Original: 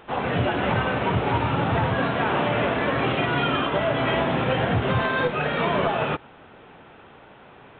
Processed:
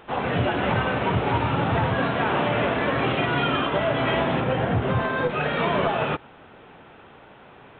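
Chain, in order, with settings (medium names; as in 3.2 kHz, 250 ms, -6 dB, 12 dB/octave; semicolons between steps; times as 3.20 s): 4.40–5.30 s: treble shelf 2.2 kHz -8.5 dB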